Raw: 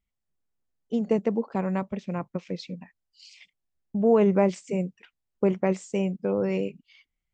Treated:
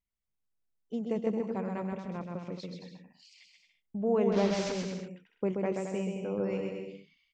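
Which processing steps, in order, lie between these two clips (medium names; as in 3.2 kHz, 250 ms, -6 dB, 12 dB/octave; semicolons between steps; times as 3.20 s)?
4.32–4.72 s: one-bit delta coder 32 kbps, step -23 dBFS; on a send: bouncing-ball echo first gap 130 ms, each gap 0.7×, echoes 5; on the sum: trim -8.5 dB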